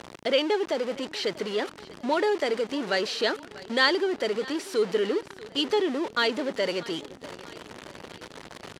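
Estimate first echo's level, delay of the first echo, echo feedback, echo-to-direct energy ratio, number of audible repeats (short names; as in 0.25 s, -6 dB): -19.5 dB, 0.641 s, 50%, -18.5 dB, 3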